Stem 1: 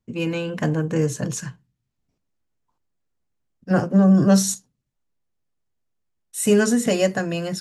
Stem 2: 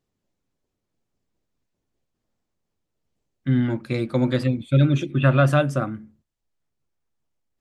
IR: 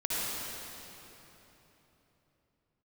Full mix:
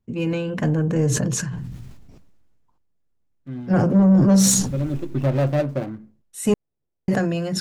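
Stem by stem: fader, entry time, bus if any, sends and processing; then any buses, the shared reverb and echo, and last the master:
-1.5 dB, 0.00 s, muted 6.54–7.08 s, no send, tilt EQ -1.5 dB/octave; decay stretcher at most 29 dB/s
4.53 s -14 dB -> 5.16 s -3 dB, 0.00 s, no send, median filter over 41 samples; peaking EQ 540 Hz +6.5 dB 1.7 oct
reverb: none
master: saturation -9 dBFS, distortion -18 dB

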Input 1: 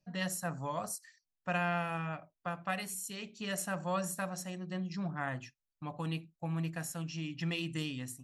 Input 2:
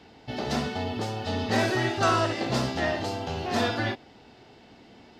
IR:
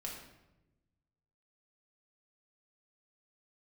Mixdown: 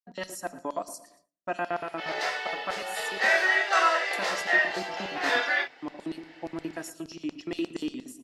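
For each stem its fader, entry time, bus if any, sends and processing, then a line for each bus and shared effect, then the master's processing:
+2.5 dB, 0.00 s, muted 3.38–4.13 s, send -10 dB, echo send -17 dB, treble shelf 2 kHz -8 dB; comb 3.1 ms, depth 37%; LFO high-pass square 8.5 Hz 330–5000 Hz
+1.0 dB, 1.70 s, no send, no echo send, inverse Chebyshev high-pass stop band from 230 Hz, stop band 40 dB; peaking EQ 1.9 kHz +12 dB 0.81 oct; chorus voices 4, 0.27 Hz, delay 25 ms, depth 3.8 ms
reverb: on, RT60 1.0 s, pre-delay 4 ms
echo: feedback delay 115 ms, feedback 38%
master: gate with hold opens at -48 dBFS

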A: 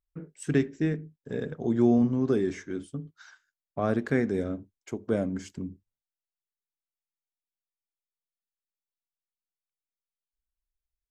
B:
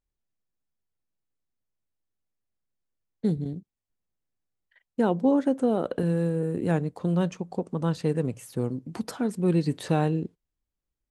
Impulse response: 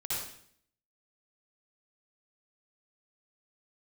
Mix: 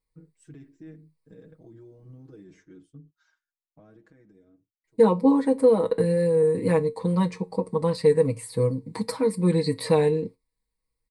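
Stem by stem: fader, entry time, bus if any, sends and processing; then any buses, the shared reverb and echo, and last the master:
-16.0 dB, 0.00 s, no send, bass shelf 340 Hz +8 dB; peak limiter -20.5 dBFS, peak gain reduction 13 dB; flange 0.4 Hz, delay 1.9 ms, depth 2.1 ms, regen -59%; auto duck -17 dB, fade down 1.35 s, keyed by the second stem
+3.0 dB, 0.00 s, muted 2.44–4.84 s, no send, rippled EQ curve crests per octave 0.94, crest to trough 14 dB; wow and flutter 48 cents; feedback comb 91 Hz, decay 0.19 s, harmonics all, mix 50%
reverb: none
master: comb 6.3 ms, depth 93%

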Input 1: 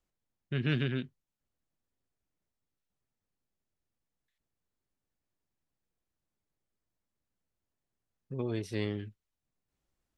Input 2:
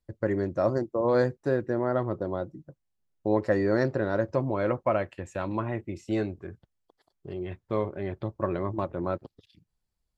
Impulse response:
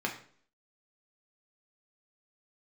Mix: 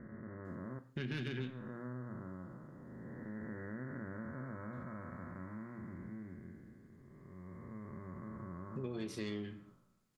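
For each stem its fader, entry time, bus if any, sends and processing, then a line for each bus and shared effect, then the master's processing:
-2.0 dB, 0.45 s, send -4.5 dB, peaking EQ 7.1 kHz +7.5 dB 2.6 oct; saturation -23 dBFS, distortion -16 dB
-11.5 dB, 0.00 s, muted 0.79–1.38 s, send -7.5 dB, spectral blur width 856 ms; steep low-pass 2.1 kHz 96 dB/octave; high-order bell 520 Hz -12.5 dB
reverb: on, RT60 0.50 s, pre-delay 3 ms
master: compression 3:1, threshold -41 dBFS, peak gain reduction 13 dB

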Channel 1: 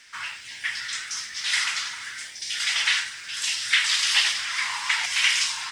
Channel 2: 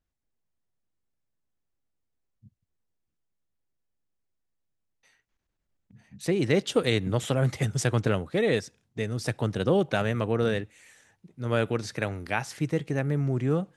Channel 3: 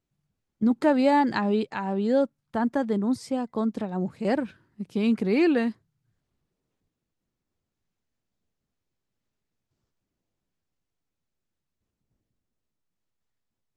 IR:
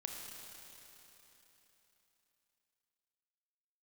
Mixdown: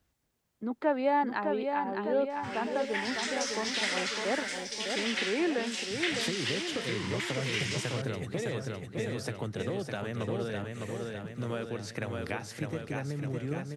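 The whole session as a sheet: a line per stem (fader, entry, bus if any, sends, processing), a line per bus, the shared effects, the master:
+0.5 dB, 2.30 s, bus A, send -13.5 dB, no echo send, treble shelf 6.6 kHz -6.5 dB; auto duck -14 dB, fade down 0.45 s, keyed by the second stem
-0.5 dB, 0.00 s, bus A, no send, echo send -13 dB, three bands compressed up and down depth 40%
-4.5 dB, 0.00 s, no bus, no send, echo send -5.5 dB, three-band isolator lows -15 dB, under 320 Hz, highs -21 dB, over 3.4 kHz
bus A: 0.0 dB, high-pass 55 Hz; compression 4:1, threshold -34 dBFS, peak gain reduction 13 dB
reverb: on, RT60 3.6 s, pre-delay 26 ms
echo: feedback delay 606 ms, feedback 58%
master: none

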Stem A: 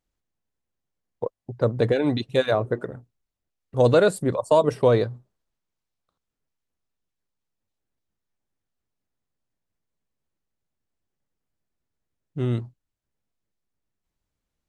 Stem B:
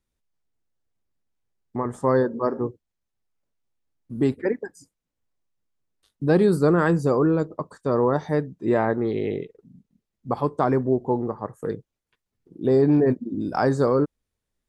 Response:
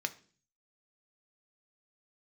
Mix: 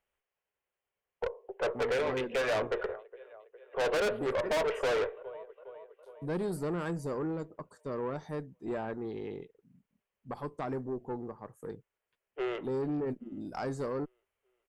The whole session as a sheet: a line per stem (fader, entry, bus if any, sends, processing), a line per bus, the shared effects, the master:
-0.5 dB, 0.00 s, send -3.5 dB, echo send -24 dB, Chebyshev band-pass 390–3100 Hz, order 5
-12.0 dB, 0.00 s, no send, no echo send, none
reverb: on, RT60 0.45 s, pre-delay 3 ms
echo: feedback delay 410 ms, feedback 60%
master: treble shelf 8.7 kHz +11.5 dB; valve stage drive 27 dB, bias 0.3

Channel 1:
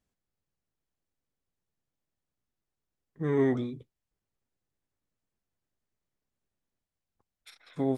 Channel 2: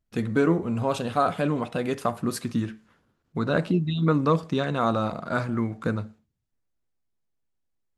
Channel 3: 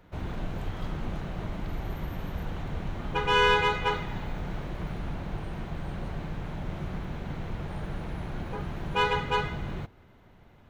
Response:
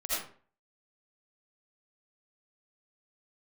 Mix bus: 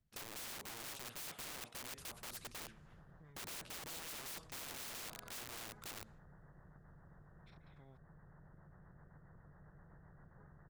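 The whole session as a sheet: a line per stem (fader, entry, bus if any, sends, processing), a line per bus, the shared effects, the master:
-11.5 dB, 0.00 s, bus A, no send, low-pass 3.3 kHz 12 dB/octave
0.0 dB, 0.00 s, no bus, no send, upward expansion 1.5:1, over -35 dBFS
-15.0 dB, 1.85 s, bus A, no send, Chebyshev low-pass 1.9 kHz, order 8; rotary cabinet horn 7.5 Hz
bus A: 0.0 dB, resonant low shelf 210 Hz +10.5 dB, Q 3; compression 10:1, threshold -41 dBFS, peak gain reduction 16.5 dB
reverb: none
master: integer overflow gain 31.5 dB; spectrum-flattening compressor 2:1

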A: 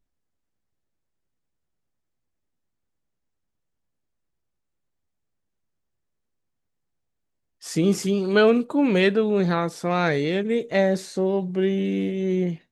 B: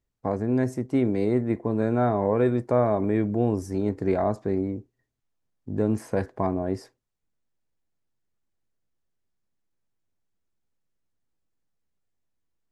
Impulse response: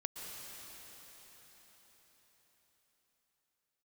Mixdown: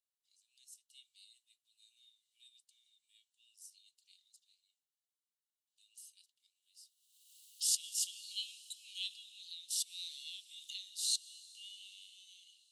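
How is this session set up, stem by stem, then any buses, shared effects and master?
-6.0 dB, 0.00 s, send -13.5 dB, swell ahead of each attack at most 42 dB/s
-4.5 dB, 0.00 s, no send, none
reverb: on, RT60 5.1 s, pre-delay 108 ms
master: rippled Chebyshev high-pass 2.8 kHz, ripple 6 dB

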